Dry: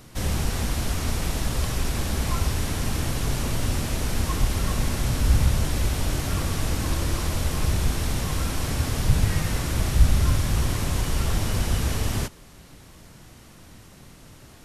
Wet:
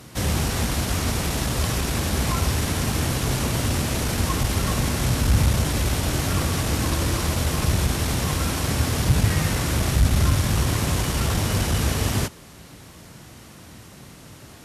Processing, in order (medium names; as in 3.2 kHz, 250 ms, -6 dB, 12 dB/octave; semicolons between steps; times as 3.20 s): valve stage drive 10 dB, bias 0.3; high-pass 66 Hz; trim +5.5 dB